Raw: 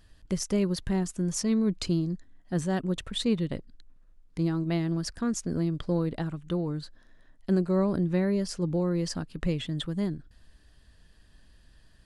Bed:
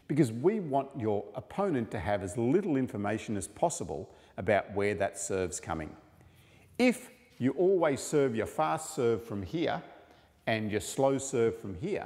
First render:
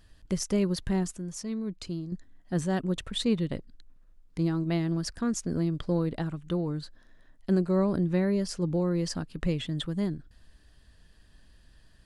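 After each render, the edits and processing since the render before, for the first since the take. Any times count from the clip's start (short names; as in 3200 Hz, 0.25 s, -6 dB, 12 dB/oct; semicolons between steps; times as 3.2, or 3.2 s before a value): 1.18–2.12 gain -8 dB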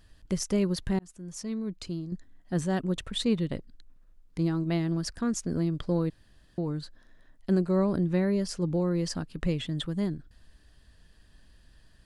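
0.99–1.43 fade in; 6.1–6.58 room tone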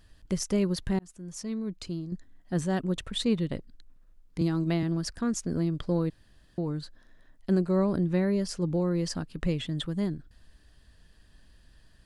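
4.41–4.83 three-band squash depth 70%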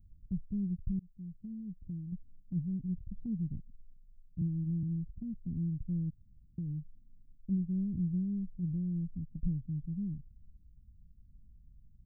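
inverse Chebyshev band-stop 850–9900 Hz, stop band 70 dB; dynamic EQ 270 Hz, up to -5 dB, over -43 dBFS, Q 0.74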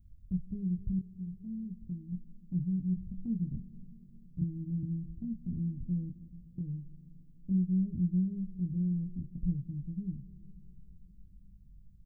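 doubler 22 ms -4 dB; digital reverb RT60 4.7 s, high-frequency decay 1×, pre-delay 45 ms, DRR 14.5 dB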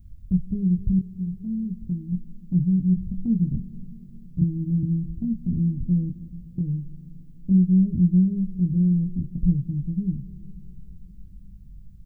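gain +11.5 dB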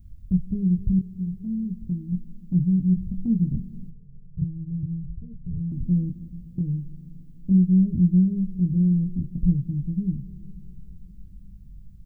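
3.9–5.72 EQ curve 140 Hz 0 dB, 270 Hz -25 dB, 450 Hz +1 dB, 730 Hz -26 dB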